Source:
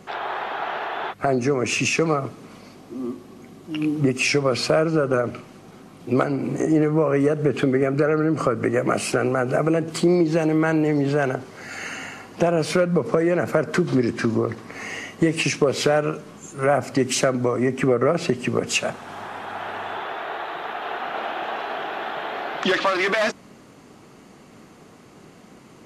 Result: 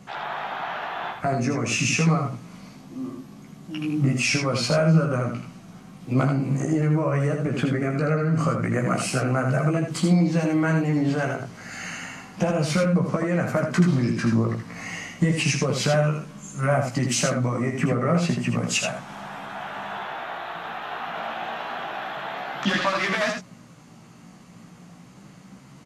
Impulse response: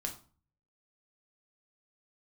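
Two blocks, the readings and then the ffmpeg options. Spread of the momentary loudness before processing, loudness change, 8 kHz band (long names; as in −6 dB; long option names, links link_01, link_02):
12 LU, −1.5 dB, +0.5 dB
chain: -af "equalizer=frequency=160:width_type=o:width=0.67:gain=10,equalizer=frequency=400:width_type=o:width=0.67:gain=-9,equalizer=frequency=6300:width_type=o:width=0.67:gain=3,flanger=delay=15:depth=2.6:speed=0.31,aecho=1:1:80:0.531"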